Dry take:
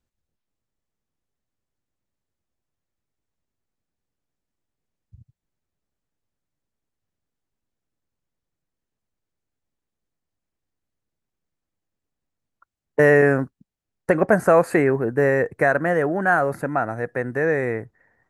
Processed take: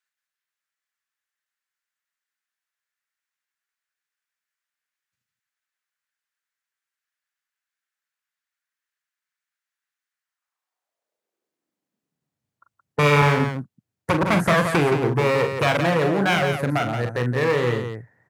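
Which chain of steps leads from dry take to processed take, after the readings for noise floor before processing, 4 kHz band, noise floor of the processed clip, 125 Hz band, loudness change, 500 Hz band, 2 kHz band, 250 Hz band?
−84 dBFS, can't be measured, below −85 dBFS, +5.5 dB, −0.5 dB, −3.0 dB, −1.0 dB, +0.5 dB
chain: wavefolder on the positive side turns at −17.5 dBFS
loudspeakers that aren't time-aligned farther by 14 metres −7 dB, 59 metres −7 dB
high-pass filter sweep 1,600 Hz → 110 Hz, 0:10.21–0:12.48

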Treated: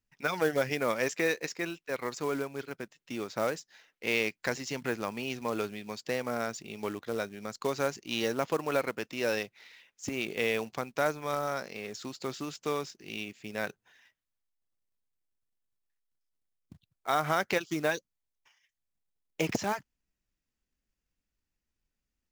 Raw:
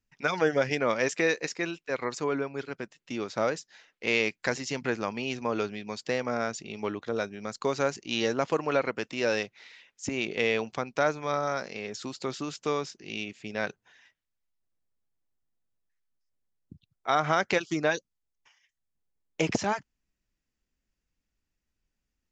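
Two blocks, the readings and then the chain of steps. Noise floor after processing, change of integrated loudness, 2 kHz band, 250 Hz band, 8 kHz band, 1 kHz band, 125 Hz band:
below −85 dBFS, −3.0 dB, −3.0 dB, −3.0 dB, −2.0 dB, −3.0 dB, −3.0 dB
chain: floating-point word with a short mantissa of 2 bits
level −3 dB

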